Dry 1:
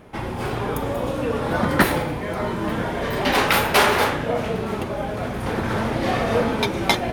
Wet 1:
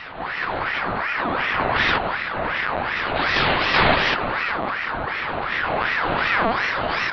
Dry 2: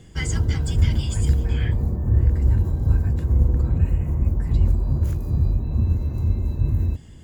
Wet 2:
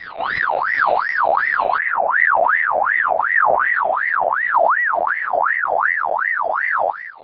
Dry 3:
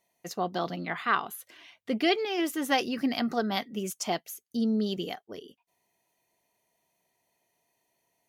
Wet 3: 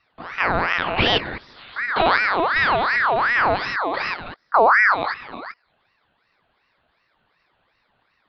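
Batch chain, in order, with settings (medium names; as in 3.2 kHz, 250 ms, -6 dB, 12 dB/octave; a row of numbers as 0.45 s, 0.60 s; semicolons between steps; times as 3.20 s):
spectrogram pixelated in time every 200 ms; LPC vocoder at 8 kHz pitch kept; ring modulator with a swept carrier 1.3 kHz, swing 50%, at 2.7 Hz; peak normalisation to -3 dBFS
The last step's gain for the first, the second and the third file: +5.0 dB, +5.5 dB, +16.0 dB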